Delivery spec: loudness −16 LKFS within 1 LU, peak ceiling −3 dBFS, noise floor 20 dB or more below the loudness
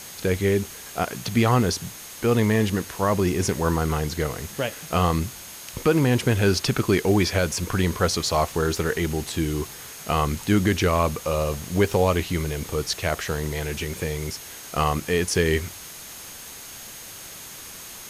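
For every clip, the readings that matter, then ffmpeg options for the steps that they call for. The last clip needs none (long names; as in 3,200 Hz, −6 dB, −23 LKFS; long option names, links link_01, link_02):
interfering tone 6,500 Hz; level of the tone −46 dBFS; background noise floor −40 dBFS; target noise floor −44 dBFS; integrated loudness −24.0 LKFS; sample peak −8.5 dBFS; target loudness −16.0 LKFS
→ -af "bandreject=frequency=6500:width=30"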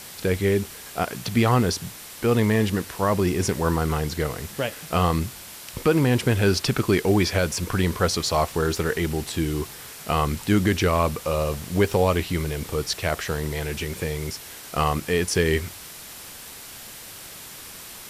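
interfering tone none found; background noise floor −41 dBFS; target noise floor −44 dBFS
→ -af "afftdn=noise_reduction=6:noise_floor=-41"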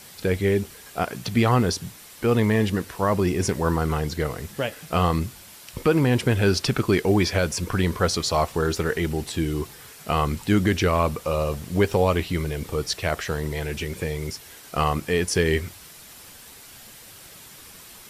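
background noise floor −46 dBFS; integrated loudness −24.0 LKFS; sample peak −9.0 dBFS; target loudness −16.0 LKFS
→ -af "volume=8dB,alimiter=limit=-3dB:level=0:latency=1"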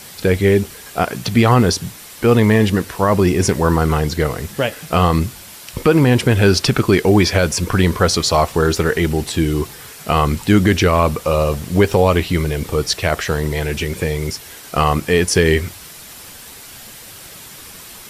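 integrated loudness −16.5 LKFS; sample peak −3.0 dBFS; background noise floor −38 dBFS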